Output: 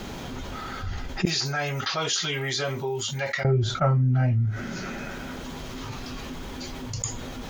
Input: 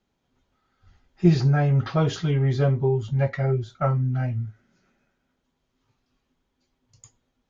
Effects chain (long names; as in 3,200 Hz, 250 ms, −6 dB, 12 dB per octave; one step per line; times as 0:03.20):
0:01.25–0:03.45: first difference
envelope flattener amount 70%